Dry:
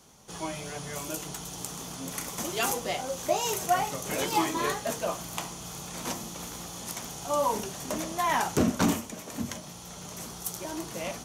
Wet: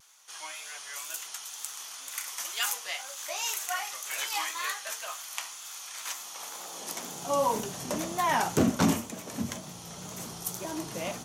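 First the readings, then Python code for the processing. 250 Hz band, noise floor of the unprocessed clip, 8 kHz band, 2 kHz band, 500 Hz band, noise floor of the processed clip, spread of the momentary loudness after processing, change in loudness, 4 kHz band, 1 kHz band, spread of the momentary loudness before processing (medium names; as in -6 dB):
-1.0 dB, -44 dBFS, 0.0 dB, +0.5 dB, -3.5 dB, -44 dBFS, 12 LU, -1.0 dB, +0.5 dB, -2.5 dB, 11 LU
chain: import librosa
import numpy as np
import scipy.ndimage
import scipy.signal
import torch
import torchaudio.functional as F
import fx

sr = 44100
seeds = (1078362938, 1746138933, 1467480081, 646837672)

y = fx.filter_sweep_highpass(x, sr, from_hz=1500.0, to_hz=94.0, start_s=6.13, end_s=7.55, q=1.0)
y = fx.vibrato(y, sr, rate_hz=2.0, depth_cents=61.0)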